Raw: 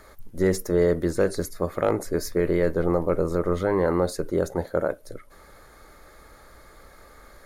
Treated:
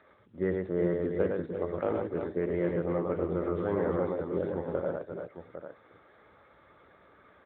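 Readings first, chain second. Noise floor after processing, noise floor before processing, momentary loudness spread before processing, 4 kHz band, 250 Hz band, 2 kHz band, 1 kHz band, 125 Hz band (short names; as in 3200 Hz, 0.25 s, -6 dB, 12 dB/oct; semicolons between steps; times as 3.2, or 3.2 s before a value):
-60 dBFS, -51 dBFS, 5 LU, under -15 dB, -6.0 dB, -8.5 dB, -7.5 dB, -7.0 dB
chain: tapped delay 49/109/333/345/801 ms -17/-3.5/-15.5/-8.5/-10.5 dB; gain -8 dB; AMR-NB 10.2 kbps 8000 Hz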